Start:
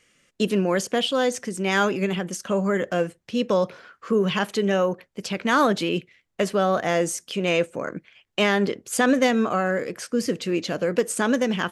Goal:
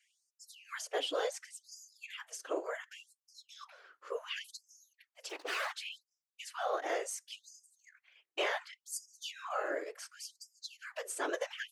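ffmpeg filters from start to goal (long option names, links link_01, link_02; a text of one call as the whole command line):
ffmpeg -i in.wav -filter_complex "[0:a]asettb=1/sr,asplit=3[link_01][link_02][link_03];[link_01]atrim=end=5.294[link_04];[link_02]atrim=start=5.29:end=5.72,asetpts=PTS-STARTPTS,afade=type=in:duration=0.004:curve=qsin,afade=type=out:start_time=0.426:duration=0.004:curve=qsin,aeval=exprs='abs(val(0))':channel_layout=same[link_05];[link_03]atrim=start=5.716[link_06];[link_04][link_05]acrossfade=duration=0.004:curve1=hsin:curve2=qsin[link_07];[link_07][link_06]acrossfade=duration=0.004:curve1=qsin:curve2=hsin,afftfilt=real='hypot(re,im)*cos(2*PI*random(0))':imag='hypot(re,im)*sin(2*PI*random(1))':win_size=512:overlap=0.75,afftfilt=real='re*gte(b*sr/1024,280*pow(4900/280,0.5+0.5*sin(2*PI*0.69*pts/sr)))':imag='im*gte(b*sr/1024,280*pow(4900/280,0.5+0.5*sin(2*PI*0.69*pts/sr)))':win_size=1024:overlap=0.75,volume=-5.5dB" out.wav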